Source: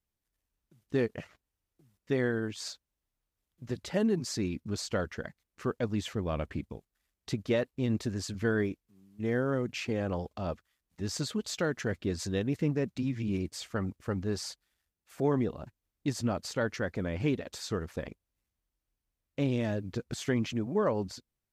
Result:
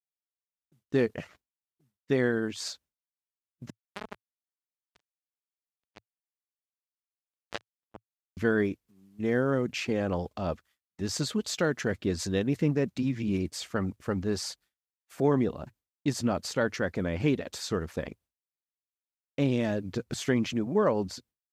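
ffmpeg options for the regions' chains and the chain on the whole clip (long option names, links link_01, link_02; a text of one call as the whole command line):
ffmpeg -i in.wav -filter_complex "[0:a]asettb=1/sr,asplit=3[link_01][link_02][link_03];[link_01]atrim=end=3.704[link_04];[link_02]atrim=start=3.7:end=8.37,asetpts=PTS-STARTPTS,afade=type=in:duration=0.004:curve=qsin,afade=type=out:start_time=4.666:duration=0.004:curve=qsin,bandreject=frequency=60:width_type=h:width=6,bandreject=frequency=120:width_type=h:width=6,bandreject=frequency=180:width_type=h:width=6,bandreject=frequency=240:width_type=h:width=6,bandreject=frequency=300:width_type=h:width=6,bandreject=frequency=360:width_type=h:width=6,bandreject=frequency=420:width_type=h:width=6,bandreject=frequency=480:width_type=h:width=6,asplit=2[link_05][link_06];[link_06]adelay=28,volume=-9dB[link_07];[link_05][link_07]amix=inputs=2:normalize=0,atrim=end_sample=205947,acrusher=bits=2:mix=0:aa=0.5[link_08];[link_03]atrim=start=8.366[link_09];[link_04][link_08]acrossfade=duration=0.004:curve1=hsin:curve2=qsin[link_10];[link_10][link_09]acrossfade=duration=0.004:curve1=qsin:curve2=hsin,highpass=62,agate=range=-33dB:threshold=-56dB:ratio=3:detection=peak,equalizer=frequency=110:width_type=o:width=0.22:gain=-7,volume=3.5dB" out.wav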